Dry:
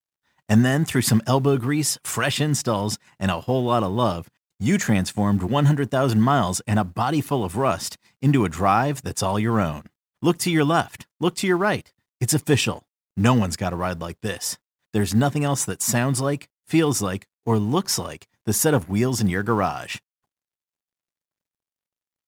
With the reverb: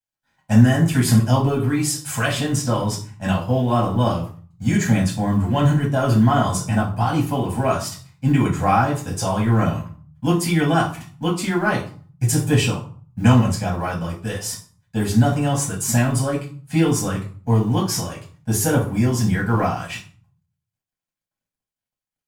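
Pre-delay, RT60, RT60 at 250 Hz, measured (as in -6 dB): 5 ms, 0.45 s, 0.60 s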